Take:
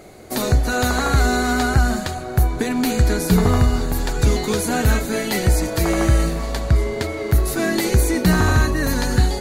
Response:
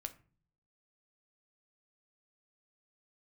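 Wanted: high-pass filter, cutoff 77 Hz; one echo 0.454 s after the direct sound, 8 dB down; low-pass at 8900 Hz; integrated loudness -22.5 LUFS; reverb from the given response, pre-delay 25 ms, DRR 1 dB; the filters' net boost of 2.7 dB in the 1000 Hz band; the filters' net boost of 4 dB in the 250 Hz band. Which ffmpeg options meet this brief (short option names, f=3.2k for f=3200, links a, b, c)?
-filter_complex "[0:a]highpass=77,lowpass=8.9k,equalizer=f=250:t=o:g=5,equalizer=f=1k:t=o:g=3.5,aecho=1:1:454:0.398,asplit=2[a][b];[1:a]atrim=start_sample=2205,adelay=25[c];[b][c]afir=irnorm=-1:irlink=0,volume=2dB[d];[a][d]amix=inputs=2:normalize=0,volume=-7dB"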